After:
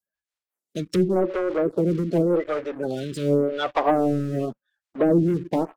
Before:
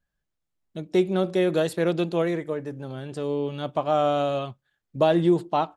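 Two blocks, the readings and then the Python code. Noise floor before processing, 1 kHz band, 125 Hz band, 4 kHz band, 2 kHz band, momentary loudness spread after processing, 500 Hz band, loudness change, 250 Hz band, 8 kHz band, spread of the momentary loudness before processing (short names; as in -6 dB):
-82 dBFS, -1.0 dB, +3.5 dB, -3.0 dB, 0.0 dB, 8 LU, +1.0 dB, +1.5 dB, +3.0 dB, n/a, 14 LU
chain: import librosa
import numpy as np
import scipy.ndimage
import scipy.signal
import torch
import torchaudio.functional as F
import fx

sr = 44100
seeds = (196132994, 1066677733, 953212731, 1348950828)

y = fx.spec_quant(x, sr, step_db=30)
y = fx.env_lowpass_down(y, sr, base_hz=460.0, full_db=-20.5)
y = fx.highpass(y, sr, hz=350.0, slope=6)
y = fx.high_shelf(y, sr, hz=6800.0, db=11.0)
y = fx.leveller(y, sr, passes=3)
y = fx.rotary_switch(y, sr, hz=5.0, then_hz=1.1, switch_at_s=2.71)
y = fx.stagger_phaser(y, sr, hz=0.89)
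y = y * librosa.db_to_amplitude(4.5)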